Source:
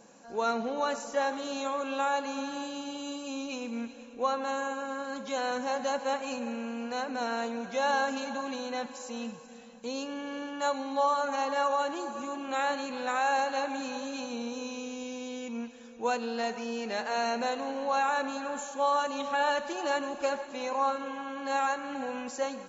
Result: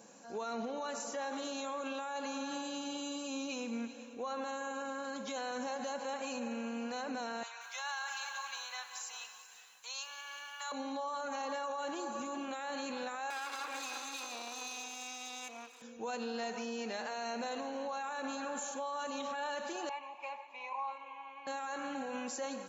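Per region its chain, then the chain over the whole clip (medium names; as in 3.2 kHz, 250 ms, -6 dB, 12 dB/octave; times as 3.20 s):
7.43–10.72 s: high-pass 1 kHz 24 dB/octave + bit-crushed delay 180 ms, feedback 55%, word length 10-bit, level -11.5 dB
13.30–15.82 s: comb filter that takes the minimum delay 0.79 ms + high-pass 410 Hz 24 dB/octave
19.89–21.47 s: two resonant band-passes 1.5 kHz, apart 1.3 oct + peaking EQ 1.5 kHz +4.5 dB 1.4 oct
whole clip: treble shelf 5.8 kHz +6.5 dB; peak limiter -29 dBFS; high-pass 95 Hz 12 dB/octave; trim -2 dB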